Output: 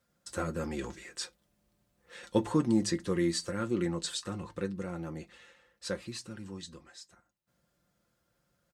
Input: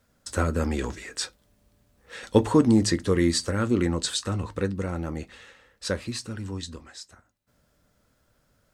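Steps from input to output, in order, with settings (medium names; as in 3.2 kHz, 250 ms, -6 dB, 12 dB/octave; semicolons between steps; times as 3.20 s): high-pass 54 Hz; comb 5.7 ms, depth 59%; trim -9 dB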